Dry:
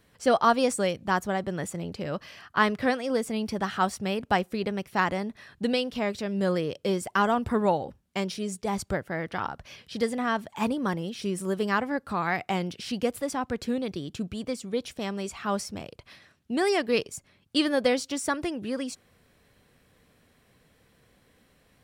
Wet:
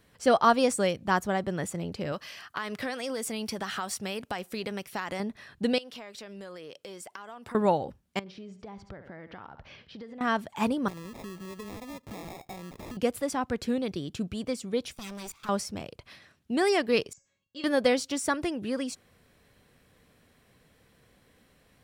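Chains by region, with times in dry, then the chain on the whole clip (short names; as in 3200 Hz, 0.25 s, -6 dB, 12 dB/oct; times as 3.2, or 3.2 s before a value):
2.12–5.2 tilt +2 dB/oct + compressor 12:1, threshold -28 dBFS
5.78–7.55 HPF 680 Hz 6 dB/oct + compressor 12:1, threshold -39 dBFS
8.19–10.21 feedback echo 70 ms, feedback 21%, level -17 dB + compressor, threshold -40 dBFS + air absorption 210 m
10.88–12.97 LPF 5500 Hz 24 dB/oct + compressor 8:1, threshold -37 dBFS + sample-rate reducer 1500 Hz
14.93–15.49 minimum comb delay 0.85 ms + high shelf 5000 Hz +10 dB + level quantiser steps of 20 dB
17.13–17.64 steep low-pass 7600 Hz 96 dB/oct + resonator 550 Hz, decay 0.42 s, mix 90%
whole clip: dry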